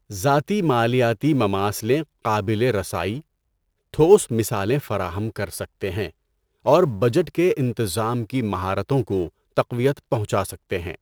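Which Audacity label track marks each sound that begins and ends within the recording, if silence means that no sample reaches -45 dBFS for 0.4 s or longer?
3.940000	6.110000	sound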